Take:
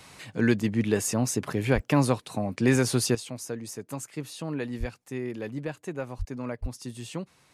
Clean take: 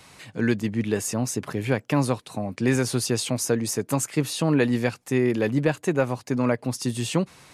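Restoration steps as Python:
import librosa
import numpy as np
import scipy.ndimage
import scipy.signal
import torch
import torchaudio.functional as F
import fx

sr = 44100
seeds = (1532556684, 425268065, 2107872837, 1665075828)

y = fx.fix_deplosive(x, sr, at_s=(1.74, 4.79, 6.18, 6.61))
y = fx.fix_interpolate(y, sr, at_s=(1.83, 4.07), length_ms=1.4)
y = fx.gain(y, sr, db=fx.steps((0.0, 0.0), (3.15, 11.5)))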